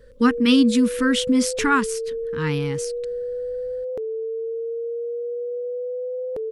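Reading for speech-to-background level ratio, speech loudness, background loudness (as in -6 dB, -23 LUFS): 8.0 dB, -20.5 LUFS, -28.5 LUFS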